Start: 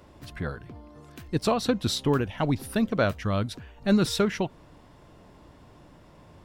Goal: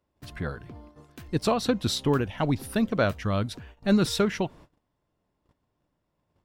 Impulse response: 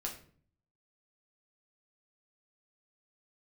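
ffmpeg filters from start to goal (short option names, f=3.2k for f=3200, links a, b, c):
-af "agate=range=-25dB:threshold=-47dB:ratio=16:detection=peak"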